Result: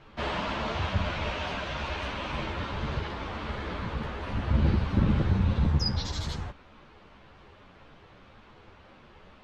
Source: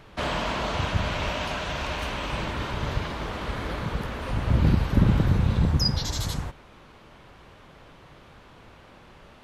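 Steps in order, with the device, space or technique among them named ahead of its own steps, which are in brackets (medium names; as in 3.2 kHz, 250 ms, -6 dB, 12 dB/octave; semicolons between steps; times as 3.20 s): string-machine ensemble chorus (three-phase chorus; low-pass 5 kHz 12 dB/octave)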